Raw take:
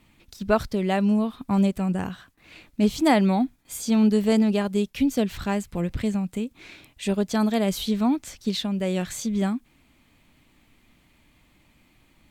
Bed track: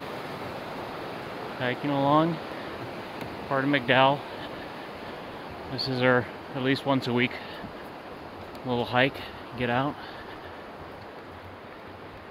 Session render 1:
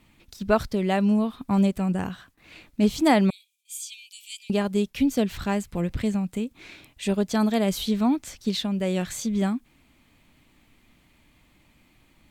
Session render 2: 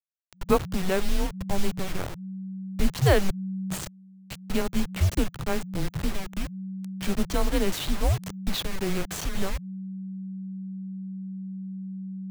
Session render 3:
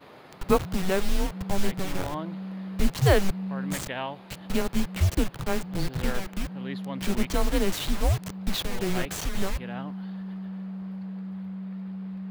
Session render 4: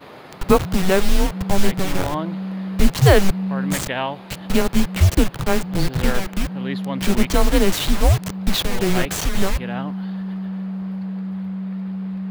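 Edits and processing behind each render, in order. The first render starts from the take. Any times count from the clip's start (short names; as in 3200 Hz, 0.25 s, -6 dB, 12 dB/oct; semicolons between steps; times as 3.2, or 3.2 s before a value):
3.3–4.5 rippled Chebyshev high-pass 2300 Hz, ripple 6 dB
level-crossing sampler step -27.5 dBFS; frequency shift -190 Hz
add bed track -13 dB
gain +8.5 dB; limiter -1 dBFS, peak gain reduction 2 dB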